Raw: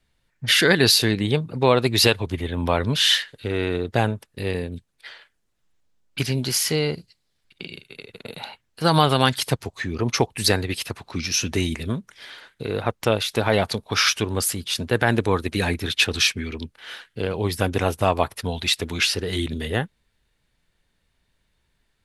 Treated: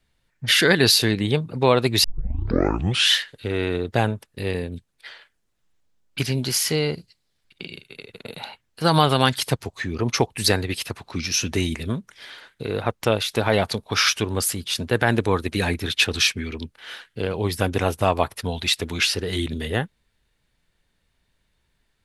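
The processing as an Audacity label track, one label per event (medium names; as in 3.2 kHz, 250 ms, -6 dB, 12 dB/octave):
2.040000	2.040000	tape start 1.07 s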